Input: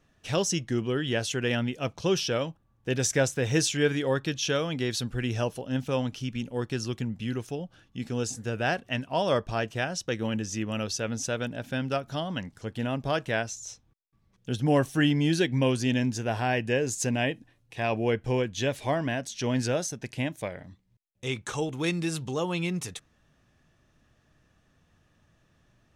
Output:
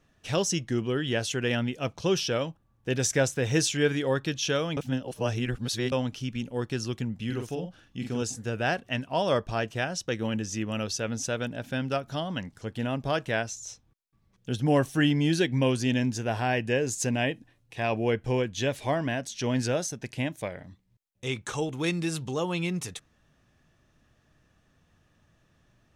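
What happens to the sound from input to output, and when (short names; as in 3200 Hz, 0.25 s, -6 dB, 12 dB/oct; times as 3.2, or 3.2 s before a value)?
4.77–5.92 reverse
7.25–8.22 doubler 46 ms -5.5 dB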